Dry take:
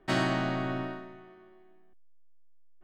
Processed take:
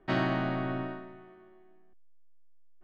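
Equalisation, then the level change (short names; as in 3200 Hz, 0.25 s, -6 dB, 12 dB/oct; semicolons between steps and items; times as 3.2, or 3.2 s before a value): air absorption 220 m; 0.0 dB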